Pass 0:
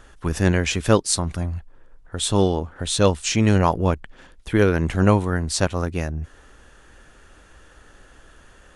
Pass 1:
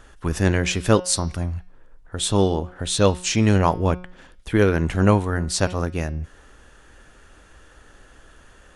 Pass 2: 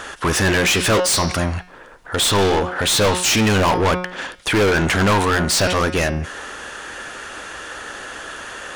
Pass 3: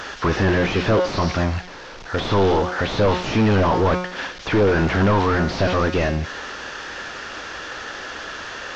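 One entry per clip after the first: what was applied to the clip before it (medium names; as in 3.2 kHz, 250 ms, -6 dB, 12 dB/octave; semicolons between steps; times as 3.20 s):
de-hum 181 Hz, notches 33
overdrive pedal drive 36 dB, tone 7.1 kHz, clips at -1 dBFS; trim -7.5 dB
one-bit delta coder 32 kbps, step -31.5 dBFS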